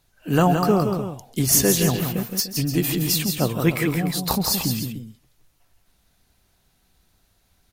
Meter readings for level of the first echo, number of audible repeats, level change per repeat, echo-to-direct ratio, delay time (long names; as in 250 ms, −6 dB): −17.0 dB, 3, repeats not evenly spaced, −4.5 dB, 137 ms